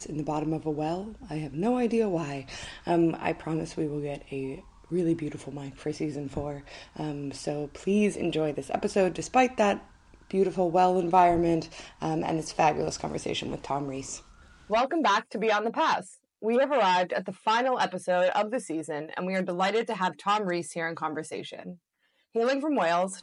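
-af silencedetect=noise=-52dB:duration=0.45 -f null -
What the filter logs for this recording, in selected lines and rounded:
silence_start: 21.76
silence_end: 22.35 | silence_duration: 0.59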